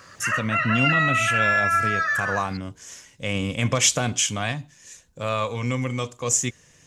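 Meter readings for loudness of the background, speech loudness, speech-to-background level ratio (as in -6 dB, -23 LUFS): -21.5 LUFS, -25.5 LUFS, -4.0 dB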